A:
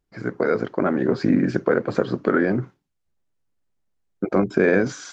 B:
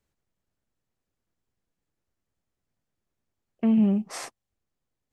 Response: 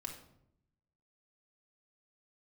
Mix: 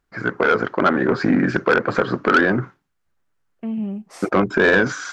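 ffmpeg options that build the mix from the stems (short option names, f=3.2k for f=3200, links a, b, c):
-filter_complex "[0:a]equalizer=f=1.4k:w=1:g=11,asoftclip=type=tanh:threshold=-9dB,volume=2dB[a];[1:a]volume=-5dB[b];[a][b]amix=inputs=2:normalize=0"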